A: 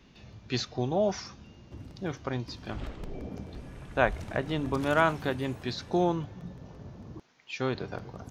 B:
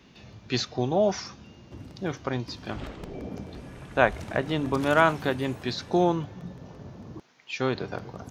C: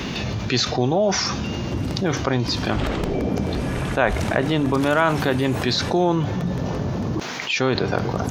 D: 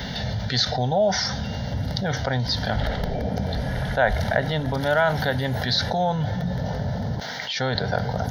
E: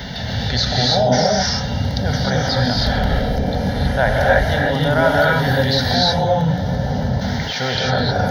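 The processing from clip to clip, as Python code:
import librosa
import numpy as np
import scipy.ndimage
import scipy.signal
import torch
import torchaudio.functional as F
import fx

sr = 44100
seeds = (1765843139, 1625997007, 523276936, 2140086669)

y1 = fx.highpass(x, sr, hz=100.0, slope=6)
y1 = y1 * 10.0 ** (4.0 / 20.0)
y2 = fx.env_flatten(y1, sr, amount_pct=70)
y3 = fx.fixed_phaser(y2, sr, hz=1700.0, stages=8)
y3 = y3 * 10.0 ** (1.0 / 20.0)
y4 = fx.rev_gated(y3, sr, seeds[0], gate_ms=340, shape='rising', drr_db=-3.5)
y4 = y4 * 10.0 ** (1.5 / 20.0)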